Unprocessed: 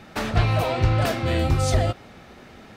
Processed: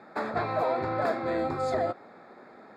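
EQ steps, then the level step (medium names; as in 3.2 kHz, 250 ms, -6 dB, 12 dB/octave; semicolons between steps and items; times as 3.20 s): boxcar filter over 15 samples; high-pass 250 Hz 12 dB/octave; bass shelf 330 Hz -7.5 dB; +1.0 dB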